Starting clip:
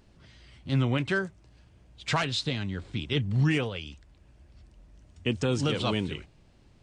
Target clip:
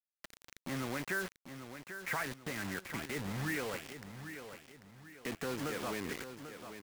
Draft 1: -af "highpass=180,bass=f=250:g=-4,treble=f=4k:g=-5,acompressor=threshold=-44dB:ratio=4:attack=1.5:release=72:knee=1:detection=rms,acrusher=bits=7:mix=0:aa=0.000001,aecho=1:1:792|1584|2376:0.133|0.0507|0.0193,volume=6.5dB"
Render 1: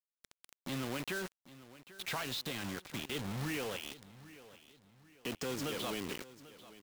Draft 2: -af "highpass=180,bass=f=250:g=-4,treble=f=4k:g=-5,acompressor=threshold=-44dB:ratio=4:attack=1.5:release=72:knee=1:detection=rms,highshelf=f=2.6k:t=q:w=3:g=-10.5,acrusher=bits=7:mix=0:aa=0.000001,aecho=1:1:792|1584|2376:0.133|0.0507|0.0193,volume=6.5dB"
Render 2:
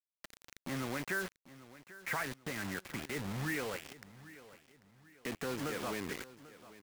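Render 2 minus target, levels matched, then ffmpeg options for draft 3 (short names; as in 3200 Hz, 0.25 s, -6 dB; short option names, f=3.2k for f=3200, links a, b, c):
echo-to-direct -7.5 dB
-af "highpass=180,bass=f=250:g=-4,treble=f=4k:g=-5,acompressor=threshold=-44dB:ratio=4:attack=1.5:release=72:knee=1:detection=rms,highshelf=f=2.6k:t=q:w=3:g=-10.5,acrusher=bits=7:mix=0:aa=0.000001,aecho=1:1:792|1584|2376|3168:0.316|0.12|0.0457|0.0174,volume=6.5dB"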